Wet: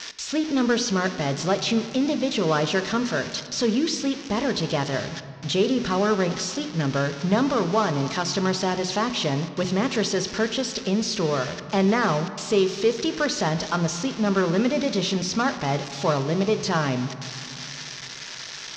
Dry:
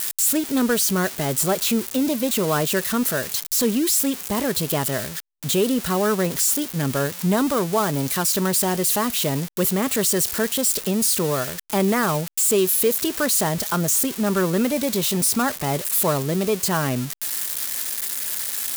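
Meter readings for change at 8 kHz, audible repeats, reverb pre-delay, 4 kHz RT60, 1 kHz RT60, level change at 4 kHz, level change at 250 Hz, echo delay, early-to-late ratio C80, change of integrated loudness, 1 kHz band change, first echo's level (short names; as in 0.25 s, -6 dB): -11.0 dB, none, 4 ms, 1.3 s, 2.8 s, -0.5 dB, -1.0 dB, none, 12.5 dB, -3.5 dB, 0.0 dB, none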